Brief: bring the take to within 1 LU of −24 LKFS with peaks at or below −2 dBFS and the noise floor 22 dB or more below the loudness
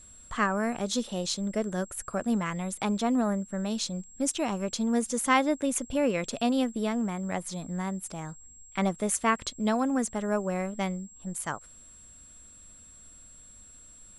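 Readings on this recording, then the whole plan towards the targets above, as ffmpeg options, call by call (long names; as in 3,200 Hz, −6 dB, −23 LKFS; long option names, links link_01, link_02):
interfering tone 7,600 Hz; level of the tone −50 dBFS; integrated loudness −29.5 LKFS; sample peak −10.5 dBFS; target loudness −24.0 LKFS
→ -af "bandreject=frequency=7600:width=30"
-af "volume=5.5dB"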